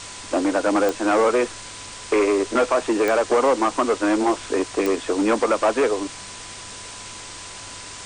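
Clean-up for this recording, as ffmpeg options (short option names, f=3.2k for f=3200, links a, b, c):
-af "adeclick=t=4,bandreject=f=99.3:t=h:w=4,bandreject=f=198.6:t=h:w=4,bandreject=f=297.9:t=h:w=4,bandreject=f=397.2:t=h:w=4,bandreject=f=496.5:t=h:w=4,bandreject=f=1k:w=30,afwtdn=0.02"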